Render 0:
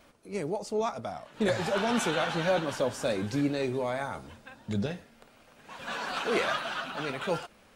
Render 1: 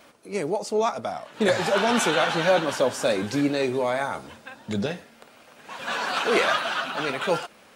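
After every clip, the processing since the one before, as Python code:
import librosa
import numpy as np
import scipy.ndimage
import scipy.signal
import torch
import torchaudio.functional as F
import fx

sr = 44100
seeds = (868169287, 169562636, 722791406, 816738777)

y = fx.highpass(x, sr, hz=260.0, slope=6)
y = y * librosa.db_to_amplitude(7.5)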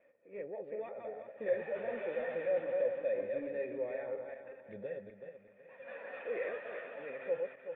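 y = fx.reverse_delay_fb(x, sr, ms=189, feedback_pct=50, wet_db=-4.5)
y = 10.0 ** (-16.0 / 20.0) * np.tanh(y / 10.0 ** (-16.0 / 20.0))
y = fx.formant_cascade(y, sr, vowel='e')
y = y * librosa.db_to_amplitude(-5.0)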